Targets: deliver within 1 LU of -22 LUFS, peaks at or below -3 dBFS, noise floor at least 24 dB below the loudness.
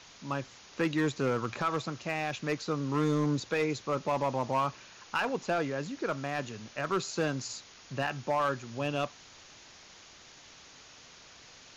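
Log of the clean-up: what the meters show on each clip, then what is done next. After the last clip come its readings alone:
clipped samples 1.1%; clipping level -22.0 dBFS; noise floor -54 dBFS; noise floor target -57 dBFS; loudness -32.5 LUFS; peak level -22.0 dBFS; loudness target -22.0 LUFS
-> clip repair -22 dBFS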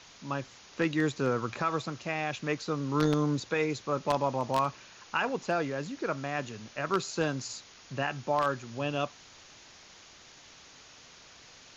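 clipped samples 0.0%; noise floor -54 dBFS; noise floor target -56 dBFS
-> noise reduction 6 dB, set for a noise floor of -54 dBFS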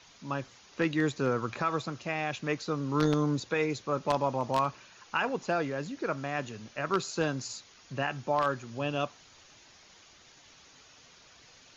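noise floor -57 dBFS; loudness -31.5 LUFS; peak level -13.0 dBFS; loudness target -22.0 LUFS
-> trim +9.5 dB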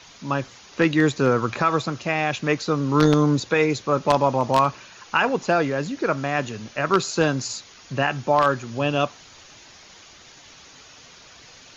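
loudness -22.0 LUFS; peak level -3.5 dBFS; noise floor -48 dBFS

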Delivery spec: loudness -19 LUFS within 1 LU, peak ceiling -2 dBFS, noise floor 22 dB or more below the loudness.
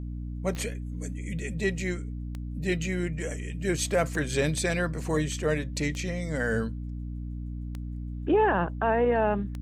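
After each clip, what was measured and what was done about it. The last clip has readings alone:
clicks found 6; hum 60 Hz; highest harmonic 300 Hz; hum level -32 dBFS; loudness -29.0 LUFS; peak level -13.5 dBFS; loudness target -19.0 LUFS
-> de-click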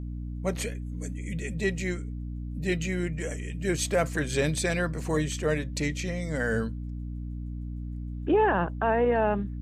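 clicks found 0; hum 60 Hz; highest harmonic 300 Hz; hum level -32 dBFS
-> hum notches 60/120/180/240/300 Hz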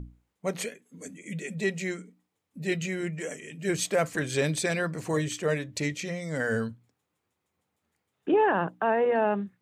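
hum not found; loudness -29.0 LUFS; peak level -14.5 dBFS; loudness target -19.0 LUFS
-> trim +10 dB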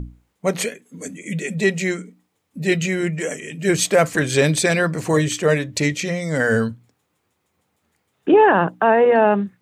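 loudness -19.0 LUFS; peak level -4.5 dBFS; noise floor -71 dBFS

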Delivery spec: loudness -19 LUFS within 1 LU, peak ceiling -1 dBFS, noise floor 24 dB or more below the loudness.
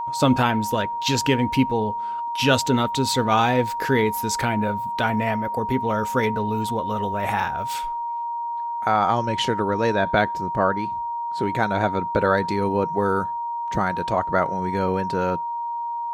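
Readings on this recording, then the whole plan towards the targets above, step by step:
steady tone 940 Hz; tone level -25 dBFS; loudness -23.0 LUFS; peak level -5.5 dBFS; loudness target -19.0 LUFS
-> band-stop 940 Hz, Q 30; trim +4 dB

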